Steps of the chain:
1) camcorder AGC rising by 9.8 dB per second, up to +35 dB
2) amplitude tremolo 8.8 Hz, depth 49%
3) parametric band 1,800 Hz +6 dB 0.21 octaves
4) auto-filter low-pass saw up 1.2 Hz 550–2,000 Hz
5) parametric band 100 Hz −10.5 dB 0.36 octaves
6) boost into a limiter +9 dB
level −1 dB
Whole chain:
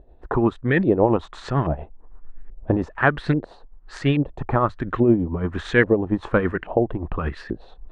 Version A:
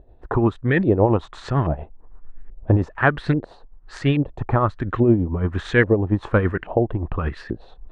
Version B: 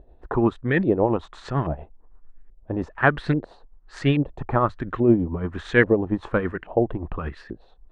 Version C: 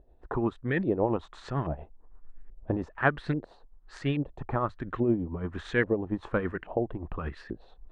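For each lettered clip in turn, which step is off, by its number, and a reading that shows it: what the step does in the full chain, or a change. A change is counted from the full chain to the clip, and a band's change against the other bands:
5, 125 Hz band +4.0 dB
1, change in crest factor +1.5 dB
6, change in crest factor +4.0 dB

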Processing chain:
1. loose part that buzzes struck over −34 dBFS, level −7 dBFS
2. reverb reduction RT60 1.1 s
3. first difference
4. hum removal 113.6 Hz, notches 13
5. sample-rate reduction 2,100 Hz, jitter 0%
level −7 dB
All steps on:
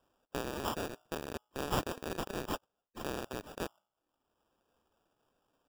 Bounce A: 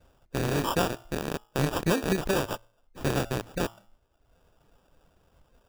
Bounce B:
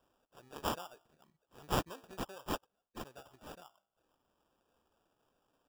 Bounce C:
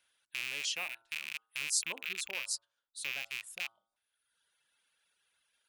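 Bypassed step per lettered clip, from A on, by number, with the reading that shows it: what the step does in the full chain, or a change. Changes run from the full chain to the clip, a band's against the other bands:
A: 3, 125 Hz band +4.5 dB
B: 1, 500 Hz band −2.0 dB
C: 5, change in crest factor +8.5 dB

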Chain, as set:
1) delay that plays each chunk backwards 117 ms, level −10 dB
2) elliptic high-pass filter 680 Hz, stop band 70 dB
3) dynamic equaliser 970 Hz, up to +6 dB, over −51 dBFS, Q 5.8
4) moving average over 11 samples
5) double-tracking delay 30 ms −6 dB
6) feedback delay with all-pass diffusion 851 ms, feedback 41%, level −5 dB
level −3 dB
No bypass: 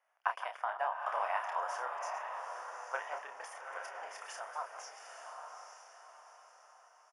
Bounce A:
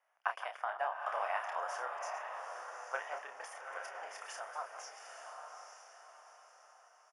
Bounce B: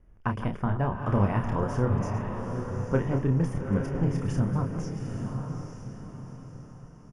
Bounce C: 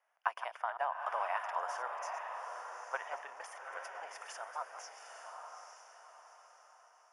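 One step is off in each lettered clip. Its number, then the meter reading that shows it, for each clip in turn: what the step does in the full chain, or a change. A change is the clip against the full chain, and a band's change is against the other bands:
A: 3, 1 kHz band −2.0 dB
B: 2, change in crest factor −10.0 dB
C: 5, change in integrated loudness −1.0 LU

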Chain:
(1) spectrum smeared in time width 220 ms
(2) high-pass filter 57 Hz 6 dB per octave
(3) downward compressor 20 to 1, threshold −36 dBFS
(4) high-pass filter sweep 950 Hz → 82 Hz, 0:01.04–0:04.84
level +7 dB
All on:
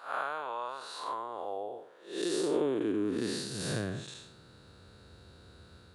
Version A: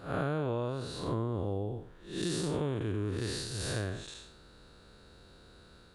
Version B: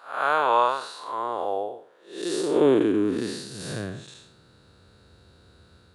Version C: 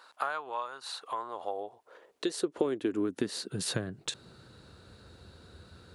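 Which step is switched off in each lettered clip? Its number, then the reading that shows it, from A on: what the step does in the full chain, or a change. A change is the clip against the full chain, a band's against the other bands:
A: 4, 125 Hz band +10.5 dB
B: 3, average gain reduction 6.0 dB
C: 1, 8 kHz band +3.0 dB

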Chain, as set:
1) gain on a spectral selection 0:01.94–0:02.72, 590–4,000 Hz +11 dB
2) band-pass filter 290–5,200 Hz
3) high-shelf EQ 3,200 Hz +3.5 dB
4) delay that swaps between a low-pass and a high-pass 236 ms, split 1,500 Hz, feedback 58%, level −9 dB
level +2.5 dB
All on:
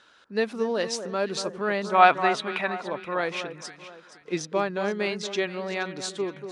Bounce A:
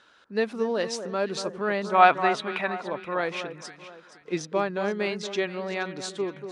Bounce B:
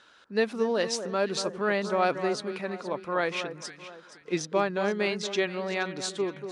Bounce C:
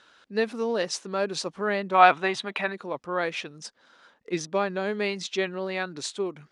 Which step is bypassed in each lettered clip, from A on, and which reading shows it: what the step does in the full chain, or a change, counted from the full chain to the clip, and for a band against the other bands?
3, 8 kHz band −2.5 dB
1, 1 kHz band −7.5 dB
4, echo-to-direct ratio −10.5 dB to none audible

